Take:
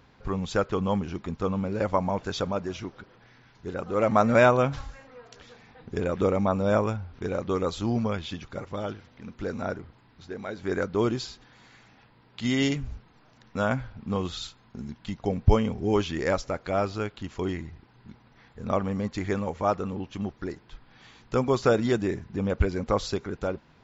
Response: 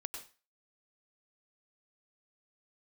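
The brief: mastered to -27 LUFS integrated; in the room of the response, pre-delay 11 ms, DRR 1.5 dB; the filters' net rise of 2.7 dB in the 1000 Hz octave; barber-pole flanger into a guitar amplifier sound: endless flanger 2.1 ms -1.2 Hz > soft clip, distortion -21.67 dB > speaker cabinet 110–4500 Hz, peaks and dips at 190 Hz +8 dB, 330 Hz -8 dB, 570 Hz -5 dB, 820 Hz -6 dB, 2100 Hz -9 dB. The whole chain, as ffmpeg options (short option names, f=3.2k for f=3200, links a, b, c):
-filter_complex "[0:a]equalizer=f=1k:t=o:g=7,asplit=2[a][b];[1:a]atrim=start_sample=2205,adelay=11[c];[b][c]afir=irnorm=-1:irlink=0,volume=0dB[d];[a][d]amix=inputs=2:normalize=0,asplit=2[e][f];[f]adelay=2.1,afreqshift=-1.2[g];[e][g]amix=inputs=2:normalize=1,asoftclip=threshold=-7dB,highpass=110,equalizer=f=190:t=q:w=4:g=8,equalizer=f=330:t=q:w=4:g=-8,equalizer=f=570:t=q:w=4:g=-5,equalizer=f=820:t=q:w=4:g=-6,equalizer=f=2.1k:t=q:w=4:g=-9,lowpass=f=4.5k:w=0.5412,lowpass=f=4.5k:w=1.3066,volume=0.5dB"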